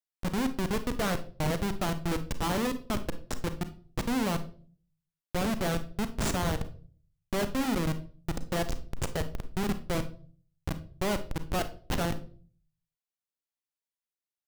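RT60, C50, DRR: 0.45 s, 14.0 dB, 10.0 dB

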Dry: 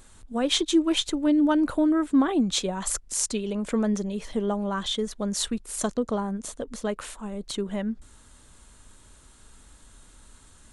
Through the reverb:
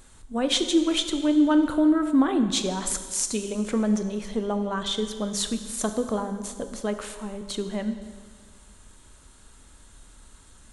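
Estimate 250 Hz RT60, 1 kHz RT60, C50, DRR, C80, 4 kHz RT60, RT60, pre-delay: 1.7 s, 1.7 s, 9.5 dB, 8.0 dB, 10.5 dB, 1.7 s, 1.7 s, 20 ms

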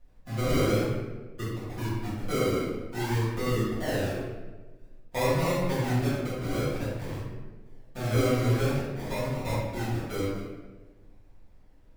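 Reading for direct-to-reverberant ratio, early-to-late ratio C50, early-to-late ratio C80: -13.0 dB, -1.0 dB, 2.0 dB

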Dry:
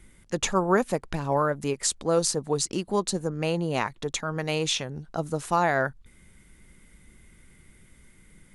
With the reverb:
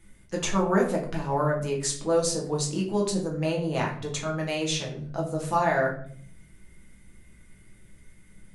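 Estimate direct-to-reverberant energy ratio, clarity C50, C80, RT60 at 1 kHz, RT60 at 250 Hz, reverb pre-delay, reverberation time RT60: -2.0 dB, 7.5 dB, 11.5 dB, 0.45 s, 0.95 s, 6 ms, 0.55 s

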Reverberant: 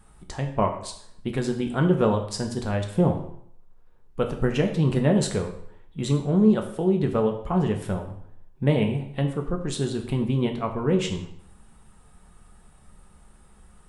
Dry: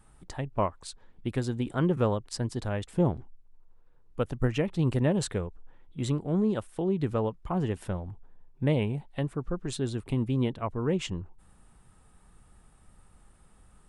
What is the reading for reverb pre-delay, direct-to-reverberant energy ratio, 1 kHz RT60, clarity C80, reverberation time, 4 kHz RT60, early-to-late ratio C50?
3 ms, 3.5 dB, 0.65 s, 11.5 dB, 0.65 s, 0.60 s, 9.0 dB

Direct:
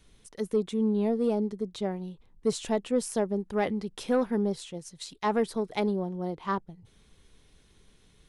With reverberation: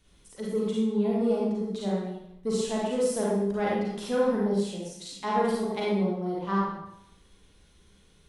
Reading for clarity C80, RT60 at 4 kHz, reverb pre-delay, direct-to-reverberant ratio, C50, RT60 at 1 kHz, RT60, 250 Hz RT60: 2.0 dB, 0.70 s, 35 ms, -5.5 dB, -1.5 dB, 0.85 s, 0.85 s, 0.80 s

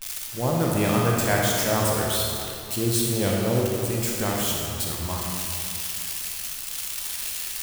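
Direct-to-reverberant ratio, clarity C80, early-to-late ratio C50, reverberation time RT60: -2.5 dB, 0.5 dB, -1.0 dB, 2.6 s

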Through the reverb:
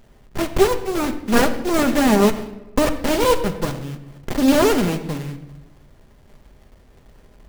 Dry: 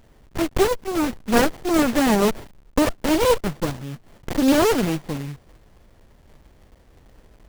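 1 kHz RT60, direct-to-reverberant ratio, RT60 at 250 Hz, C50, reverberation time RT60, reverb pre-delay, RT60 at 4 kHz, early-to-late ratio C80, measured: 0.90 s, 7.0 dB, 1.2 s, 11.5 dB, 1.0 s, 5 ms, 0.70 s, 13.0 dB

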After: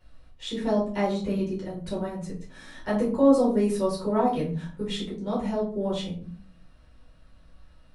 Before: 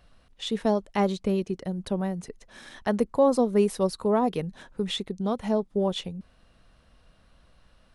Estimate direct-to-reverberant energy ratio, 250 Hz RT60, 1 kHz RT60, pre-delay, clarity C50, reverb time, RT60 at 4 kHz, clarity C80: -7.0 dB, 0.65 s, 0.40 s, 5 ms, 7.0 dB, 0.45 s, 0.30 s, 12.5 dB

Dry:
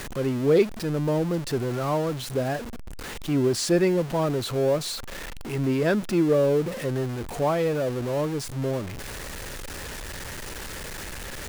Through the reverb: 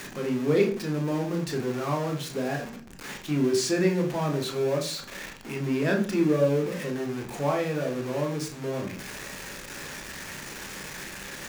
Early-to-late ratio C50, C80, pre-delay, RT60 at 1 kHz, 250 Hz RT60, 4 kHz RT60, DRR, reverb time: 10.5 dB, 15.5 dB, 20 ms, 0.40 s, 0.55 s, 0.55 s, 2.0 dB, 0.40 s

